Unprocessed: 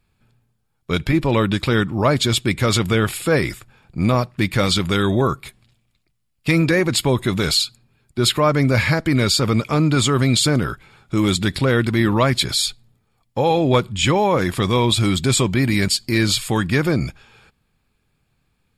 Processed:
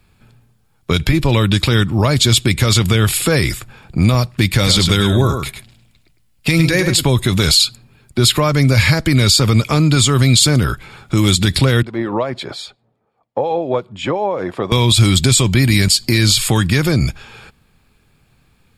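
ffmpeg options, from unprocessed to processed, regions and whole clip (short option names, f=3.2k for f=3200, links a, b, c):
-filter_complex "[0:a]asettb=1/sr,asplit=3[a][b][c];[a]atrim=end=4.544[d];[b]atrim=start=4.54:end=7.03,asetpts=PTS-STARTPTS,afade=t=in:d=0.004:c=qsin,afade=t=out:st=2.486:d=0.004:c=qsin,bandreject=f=1.2k:w=13,aecho=1:1:104:0.376,atrim=end_sample=109809[e];[c]atrim=start=7.026[f];[d][e]acrossfade=d=0.004:c1=hsin:c2=qsin[g];[g][f]acrossfade=d=0.004:c1=qsin:c2=hsin,asettb=1/sr,asplit=3[h][i][j];[h]atrim=end=11.824[k];[i]atrim=start=11.82:end=14.72,asetpts=PTS-STARTPTS,afade=t=in:d=0.004:c=qsin,afade=t=out:st=2.896:d=0.004:c=qsin,acrossover=split=2000[l][m];[l]aeval=exprs='val(0)*(1-0.5/2+0.5/2*cos(2*PI*5.7*n/s))':c=same[n];[m]aeval=exprs='val(0)*(1-0.5/2-0.5/2*cos(2*PI*5.7*n/s))':c=same[o];[n][o]amix=inputs=2:normalize=0,bandpass=f=610:t=q:w=1.4[p];[j]atrim=start=14.716[q];[k][p]acrossfade=d=0.004:c1=hsin:c2=qsin[r];[r][q]acrossfade=d=0.004:c1=qsin:c2=hsin,acrossover=split=120|3000[s][t][u];[t]acompressor=threshold=-29dB:ratio=3[v];[s][v][u]amix=inputs=3:normalize=0,alimiter=level_in=12.5dB:limit=-1dB:release=50:level=0:latency=1,volume=-1dB"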